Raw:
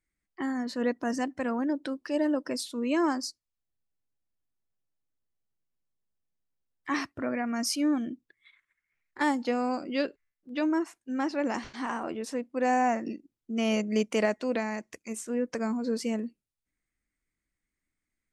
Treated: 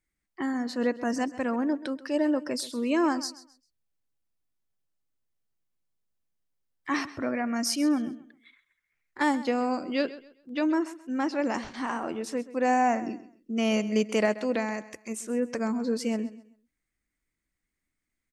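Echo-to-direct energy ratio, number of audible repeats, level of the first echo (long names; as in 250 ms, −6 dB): −16.0 dB, 2, −16.5 dB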